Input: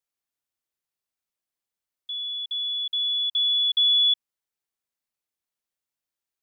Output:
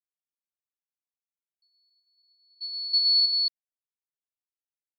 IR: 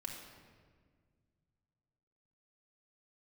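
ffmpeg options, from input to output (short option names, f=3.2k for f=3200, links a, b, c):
-filter_complex "[0:a]agate=range=-38dB:threshold=-21dB:ratio=16:detection=peak,lowpass=3.3k,asetrate=56889,aresample=44100,asplit=2[a][b];[b]aecho=0:1:50|111|121|273:0.473|0.251|0.251|0.562[c];[a][c]amix=inputs=2:normalize=0,volume=3.5dB"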